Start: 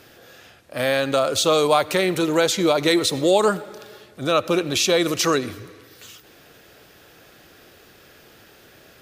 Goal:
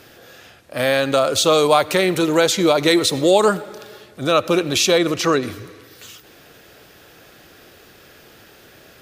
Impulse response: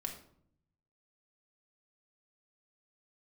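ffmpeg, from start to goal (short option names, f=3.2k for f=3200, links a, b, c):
-filter_complex "[0:a]asettb=1/sr,asplit=3[a][b][c];[a]atrim=end=4.984[d];[b]atrim=start=4.98:end=5.43,asetpts=PTS-STARTPTS,afade=t=in:d=0.004:c=qsin,afade=t=out:st=0.446:d=0.004:c=qsin,highshelf=f=4.6k:g=-10[e];[c]atrim=start=5.426[f];[d][e]acrossfade=d=0.004:c1=hsin:c2=qsin[g];[g][f]acrossfade=d=0.004:c1=qsin:c2=hsin,volume=3dB"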